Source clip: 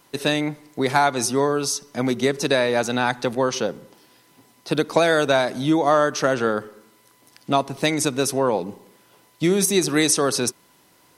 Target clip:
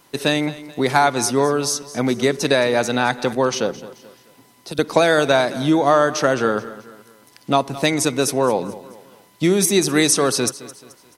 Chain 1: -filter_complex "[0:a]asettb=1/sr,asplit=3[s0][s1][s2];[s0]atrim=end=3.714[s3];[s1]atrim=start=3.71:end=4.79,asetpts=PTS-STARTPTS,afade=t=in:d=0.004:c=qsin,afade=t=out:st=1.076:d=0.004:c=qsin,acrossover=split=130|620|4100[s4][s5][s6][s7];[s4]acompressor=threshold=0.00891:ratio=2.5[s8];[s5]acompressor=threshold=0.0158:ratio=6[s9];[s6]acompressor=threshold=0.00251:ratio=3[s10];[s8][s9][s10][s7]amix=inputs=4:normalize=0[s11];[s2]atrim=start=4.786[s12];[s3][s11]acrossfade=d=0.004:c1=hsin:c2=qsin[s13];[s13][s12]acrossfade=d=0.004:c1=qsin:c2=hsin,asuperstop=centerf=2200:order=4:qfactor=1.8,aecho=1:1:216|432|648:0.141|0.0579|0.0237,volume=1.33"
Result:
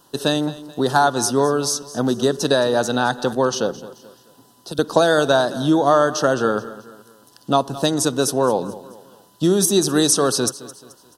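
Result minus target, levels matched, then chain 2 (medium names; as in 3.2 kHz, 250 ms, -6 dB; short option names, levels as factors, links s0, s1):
2 kHz band -3.0 dB
-filter_complex "[0:a]asettb=1/sr,asplit=3[s0][s1][s2];[s0]atrim=end=3.714[s3];[s1]atrim=start=3.71:end=4.79,asetpts=PTS-STARTPTS,afade=t=in:d=0.004:c=qsin,afade=t=out:st=1.076:d=0.004:c=qsin,acrossover=split=130|620|4100[s4][s5][s6][s7];[s4]acompressor=threshold=0.00891:ratio=2.5[s8];[s5]acompressor=threshold=0.0158:ratio=6[s9];[s6]acompressor=threshold=0.00251:ratio=3[s10];[s8][s9][s10][s7]amix=inputs=4:normalize=0[s11];[s2]atrim=start=4.786[s12];[s3][s11]acrossfade=d=0.004:c1=hsin:c2=qsin[s13];[s13][s12]acrossfade=d=0.004:c1=qsin:c2=hsin,aecho=1:1:216|432|648:0.141|0.0579|0.0237,volume=1.33"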